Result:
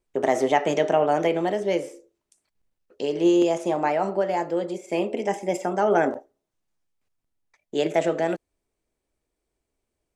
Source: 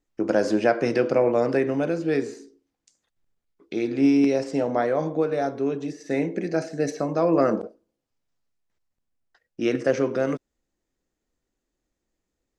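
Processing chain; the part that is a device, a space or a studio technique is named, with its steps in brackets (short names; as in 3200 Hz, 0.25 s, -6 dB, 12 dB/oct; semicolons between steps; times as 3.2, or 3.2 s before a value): nightcore (varispeed +24%)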